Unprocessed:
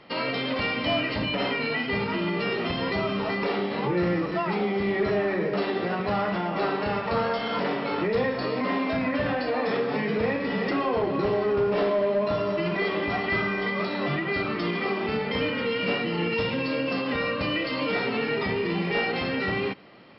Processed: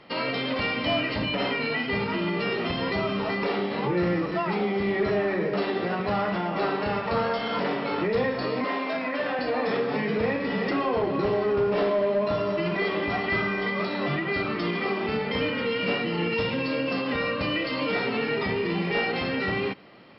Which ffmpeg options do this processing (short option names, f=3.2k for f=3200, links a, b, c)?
-filter_complex "[0:a]asettb=1/sr,asplit=3[a][b][c];[a]atrim=end=8.644[d];[b]atrim=start=8.64:end=9.39,asetpts=PTS-STARTPTS,afade=t=in:d=0.004:c=qsin,afade=t=out:st=0.746:d=0.004:c=qsin,highpass=350[e];[c]atrim=start=9.386[f];[d][e]acrossfade=d=0.004:c1=hsin:c2=qsin[g];[g][f]acrossfade=d=0.004:c1=qsin:c2=hsin"